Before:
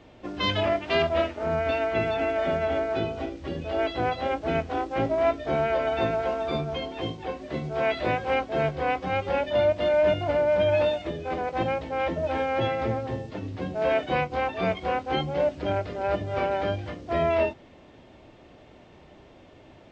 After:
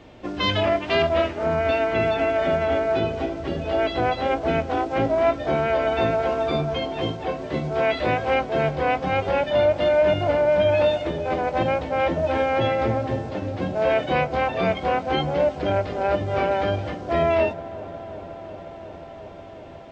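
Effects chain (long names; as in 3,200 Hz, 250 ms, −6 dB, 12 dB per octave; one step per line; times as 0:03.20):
in parallel at −2.5 dB: brickwall limiter −19.5 dBFS, peak gain reduction 7.5 dB
on the sum: delay with a low-pass on its return 361 ms, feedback 84%, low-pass 1,300 Hz, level −16.5 dB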